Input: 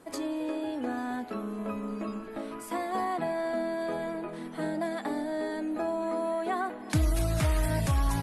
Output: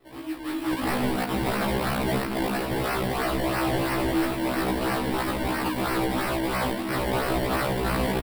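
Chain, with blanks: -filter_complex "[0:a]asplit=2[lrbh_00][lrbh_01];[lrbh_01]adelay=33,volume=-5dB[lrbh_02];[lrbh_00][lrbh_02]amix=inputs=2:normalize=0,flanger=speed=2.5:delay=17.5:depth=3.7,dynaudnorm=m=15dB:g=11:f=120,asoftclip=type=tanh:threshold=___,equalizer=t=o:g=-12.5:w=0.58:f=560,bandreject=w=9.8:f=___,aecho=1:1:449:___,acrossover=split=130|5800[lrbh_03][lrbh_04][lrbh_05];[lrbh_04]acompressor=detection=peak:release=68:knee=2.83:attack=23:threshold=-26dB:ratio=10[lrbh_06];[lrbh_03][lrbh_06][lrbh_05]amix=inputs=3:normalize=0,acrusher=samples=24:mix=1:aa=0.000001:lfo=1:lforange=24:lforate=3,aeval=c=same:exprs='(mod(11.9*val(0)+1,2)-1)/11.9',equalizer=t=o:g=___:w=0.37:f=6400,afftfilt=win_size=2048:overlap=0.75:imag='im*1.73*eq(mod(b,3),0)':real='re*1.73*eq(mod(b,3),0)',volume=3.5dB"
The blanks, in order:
-14dB, 4800, 0.398, -15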